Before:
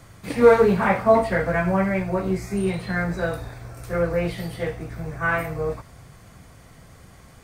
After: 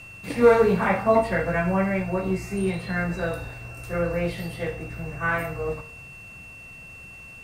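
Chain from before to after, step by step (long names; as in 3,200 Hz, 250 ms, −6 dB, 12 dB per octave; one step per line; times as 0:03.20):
steady tone 2,700 Hz −40 dBFS
hum removal 51.45 Hz, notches 35
level −1.5 dB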